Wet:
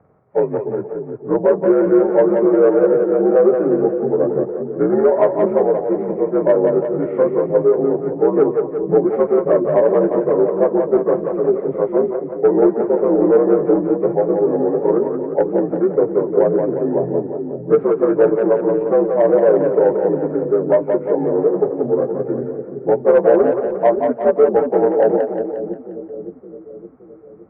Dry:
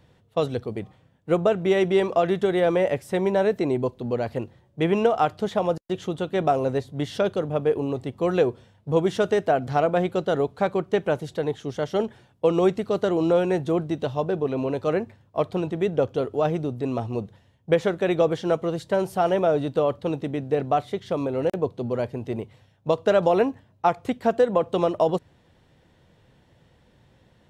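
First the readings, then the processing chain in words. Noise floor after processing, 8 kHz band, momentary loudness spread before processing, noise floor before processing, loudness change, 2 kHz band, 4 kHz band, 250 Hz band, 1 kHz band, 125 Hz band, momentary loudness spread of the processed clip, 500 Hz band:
-36 dBFS, no reading, 8 LU, -60 dBFS, +8.0 dB, -1.0 dB, under -20 dB, +8.0 dB, +2.0 dB, 0.0 dB, 9 LU, +9.0 dB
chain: frequency axis rescaled in octaves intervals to 83%; low-pass 1.5 kHz 24 dB/octave; peaking EQ 700 Hz +8.5 dB 1.7 oct; in parallel at -1.5 dB: compression, threshold -26 dBFS, peak gain reduction 16 dB; on the sum: dynamic bell 410 Hz, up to +7 dB, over -28 dBFS, Q 1; saturation -0.5 dBFS, distortion -21 dB; on a send: two-band feedback delay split 400 Hz, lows 567 ms, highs 177 ms, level -5 dB; on the sum: trim -3.5 dB

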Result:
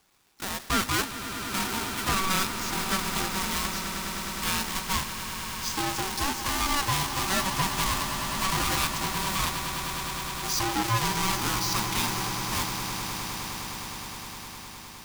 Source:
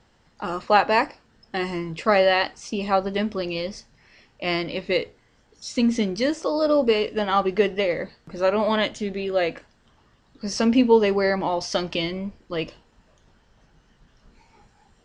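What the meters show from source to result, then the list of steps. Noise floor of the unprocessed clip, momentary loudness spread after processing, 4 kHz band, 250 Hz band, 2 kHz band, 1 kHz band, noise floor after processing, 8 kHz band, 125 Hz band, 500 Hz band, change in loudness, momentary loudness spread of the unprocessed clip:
-61 dBFS, 9 LU, +2.0 dB, -9.0 dB, -1.5 dB, -2.5 dB, -43 dBFS, +12.5 dB, +2.5 dB, -17.0 dB, -4.5 dB, 13 LU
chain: square wave that keeps the level; high-pass 260 Hz 12 dB/octave; treble shelf 2.5 kHz +12 dB; hard clipper -6 dBFS, distortion -7 dB; ring modulator 570 Hz; echo with a slow build-up 103 ms, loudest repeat 8, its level -13 dB; trim -8 dB

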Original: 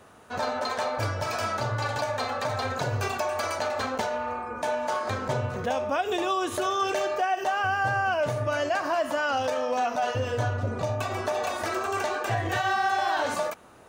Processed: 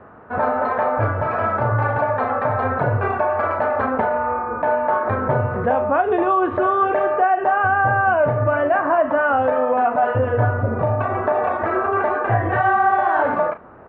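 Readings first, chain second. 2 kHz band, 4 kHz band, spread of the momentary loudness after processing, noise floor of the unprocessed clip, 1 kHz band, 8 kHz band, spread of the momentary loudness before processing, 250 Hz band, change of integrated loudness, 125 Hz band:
+7.0 dB, under -10 dB, 4 LU, -37 dBFS, +9.5 dB, under -35 dB, 4 LU, +9.5 dB, +8.5 dB, +9.0 dB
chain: low-pass 1.7 kHz 24 dB/octave; doubling 35 ms -10.5 dB; trim +9 dB

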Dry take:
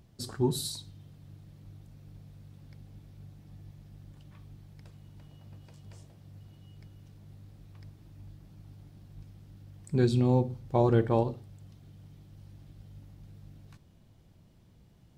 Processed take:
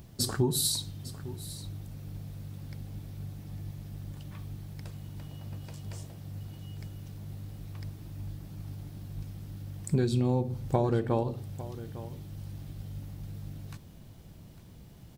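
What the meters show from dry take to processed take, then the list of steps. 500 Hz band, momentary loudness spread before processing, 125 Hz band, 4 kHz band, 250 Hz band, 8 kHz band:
-2.5 dB, 15 LU, +0.5 dB, +6.5 dB, -1.5 dB, no reading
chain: treble shelf 10 kHz +10 dB; compression 16:1, threshold -31 dBFS, peak gain reduction 13.5 dB; delay 853 ms -16 dB; trim +8.5 dB

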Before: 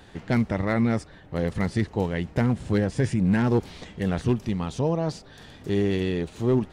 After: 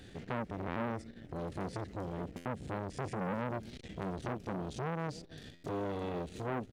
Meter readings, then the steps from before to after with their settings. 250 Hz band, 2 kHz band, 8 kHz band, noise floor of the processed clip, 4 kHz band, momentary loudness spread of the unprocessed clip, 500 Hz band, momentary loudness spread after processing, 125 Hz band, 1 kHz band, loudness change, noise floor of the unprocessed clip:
-16.0 dB, -11.5 dB, -11.5 dB, -54 dBFS, -12.0 dB, 8 LU, -12.5 dB, 6 LU, -15.5 dB, -5.5 dB, -14.0 dB, -49 dBFS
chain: peaking EQ 960 Hz -15 dB 0.84 oct; harmonic-percussive split harmonic +8 dB; peaking EQ 280 Hz +3.5 dB 0.86 oct; compression 4:1, threshold -22 dBFS, peak gain reduction 11.5 dB; short-mantissa float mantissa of 6-bit; on a send: delay 283 ms -19.5 dB; on the sum: buffer glitch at 0.67/2.36/5.54 s, samples 512, times 7; transformer saturation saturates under 1.2 kHz; trim -6.5 dB

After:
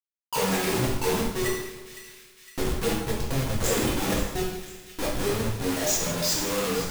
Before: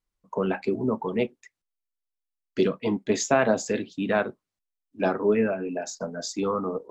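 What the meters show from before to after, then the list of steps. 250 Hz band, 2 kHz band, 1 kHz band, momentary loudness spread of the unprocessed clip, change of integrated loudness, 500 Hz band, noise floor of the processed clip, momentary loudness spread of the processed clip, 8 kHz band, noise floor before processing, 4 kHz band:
-2.0 dB, +0.5 dB, -0.5 dB, 10 LU, 0.0 dB, -3.0 dB, -54 dBFS, 14 LU, +8.0 dB, under -85 dBFS, +9.5 dB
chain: expander on every frequency bin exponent 2; bass shelf 230 Hz +10.5 dB; de-hum 183.6 Hz, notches 12; transient shaper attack -4 dB, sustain +7 dB; in parallel at +2 dB: compression 20:1, threshold -37 dBFS, peak gain reduction 20 dB; on the sum: inverted gate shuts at -16 dBFS, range -29 dB; Schmitt trigger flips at -45 dBFS; on a send: two-band feedback delay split 1.7 kHz, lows 164 ms, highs 510 ms, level -13 dB; on the sum: gain riding 2 s; treble shelf 4.3 kHz +6.5 dB; gated-style reverb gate 240 ms falling, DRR -5 dB

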